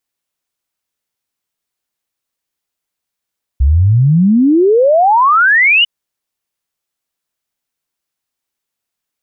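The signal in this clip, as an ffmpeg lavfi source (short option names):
-f lavfi -i "aevalsrc='0.501*clip(min(t,2.25-t)/0.01,0,1)*sin(2*PI*63*2.25/log(3000/63)*(exp(log(3000/63)*t/2.25)-1))':d=2.25:s=44100"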